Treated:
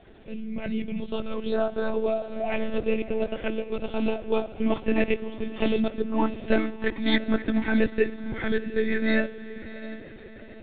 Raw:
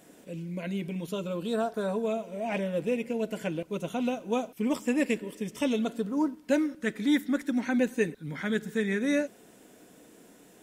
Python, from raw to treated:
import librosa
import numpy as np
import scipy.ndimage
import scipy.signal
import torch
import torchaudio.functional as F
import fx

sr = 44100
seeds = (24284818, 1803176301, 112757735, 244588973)

y = fx.echo_diffused(x, sr, ms=680, feedback_pct=46, wet_db=-14)
y = fx.lpc_monotone(y, sr, seeds[0], pitch_hz=220.0, order=16)
y = y * librosa.db_to_amplitude(4.0)